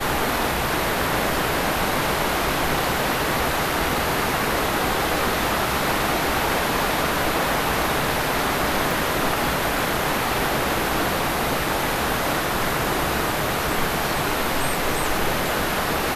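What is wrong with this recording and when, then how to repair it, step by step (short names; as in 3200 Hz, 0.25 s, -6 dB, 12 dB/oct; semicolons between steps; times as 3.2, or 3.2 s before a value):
8.91 pop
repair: de-click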